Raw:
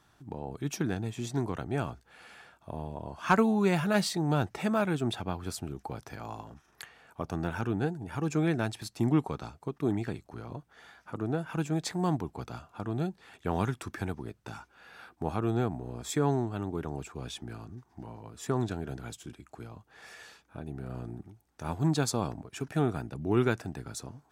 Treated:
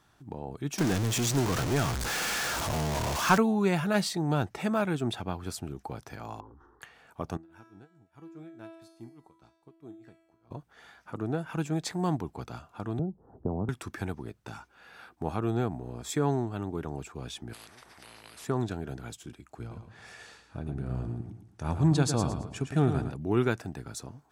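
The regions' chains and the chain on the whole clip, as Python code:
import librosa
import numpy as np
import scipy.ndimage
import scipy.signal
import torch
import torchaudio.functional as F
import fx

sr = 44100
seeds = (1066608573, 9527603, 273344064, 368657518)

y = fx.chain(x, sr, fx.zero_step(step_db=-26.5),
    fx.peak_eq(hz=6200.0, db=5.5, octaves=0.94), at=(0.78, 3.38))
y = fx.chain(y, sr, fx.lowpass(hz=1000.0, slope=12),
    fx.fixed_phaser(hz=650.0, stages=6),
    fx.sustainer(db_per_s=43.0), at=(6.4, 6.82))
y = fx.chain(y, sr, fx.tremolo(hz=4.8, depth=0.93),
    fx.comb_fb(f0_hz=330.0, decay_s=0.94, harmonics='all', damping=0.0, mix_pct=90), at=(7.37, 10.51))
y = fx.chain(y, sr, fx.gaussian_blur(sigma=12.0),
    fx.band_squash(depth_pct=100), at=(12.99, 13.69))
y = fx.chain(y, sr, fx.brickwall_lowpass(high_hz=12000.0),
    fx.peak_eq(hz=6700.0, db=-10.0, octaves=0.42),
    fx.spectral_comp(ratio=10.0), at=(17.53, 18.45))
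y = fx.chain(y, sr, fx.lowpass(hz=11000.0, slope=24),
    fx.low_shelf(hz=140.0, db=9.5),
    fx.echo_feedback(ms=110, feedback_pct=35, wet_db=-8), at=(19.59, 23.12))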